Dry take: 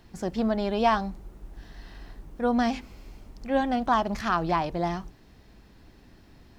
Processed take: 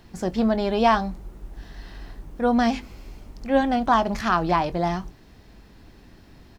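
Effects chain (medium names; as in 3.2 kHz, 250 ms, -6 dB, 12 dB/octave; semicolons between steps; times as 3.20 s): doubling 22 ms -14 dB; trim +4 dB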